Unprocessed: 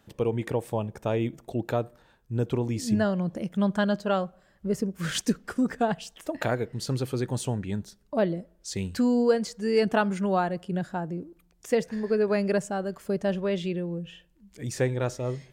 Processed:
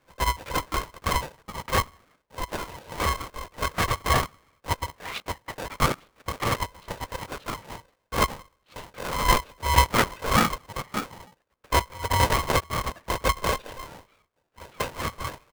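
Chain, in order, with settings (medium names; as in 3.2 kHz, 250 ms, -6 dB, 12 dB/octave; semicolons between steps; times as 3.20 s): local Wiener filter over 15 samples; high-pass 420 Hz 24 dB/octave; treble shelf 2.5 kHz -8.5 dB; comb 6.9 ms, depth 90%; LPC vocoder at 8 kHz whisper; polarity switched at an audio rate 520 Hz; trim +2 dB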